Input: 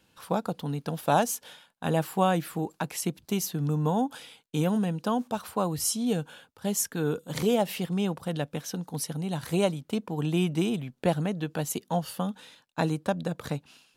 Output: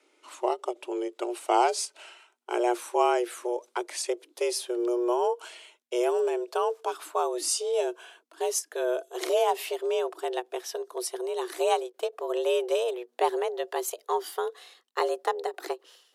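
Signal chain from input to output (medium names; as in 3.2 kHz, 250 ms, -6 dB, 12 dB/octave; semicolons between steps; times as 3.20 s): gliding tape speed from 71% -> 102%; frequency shift +240 Hz; endings held to a fixed fall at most 450 dB/s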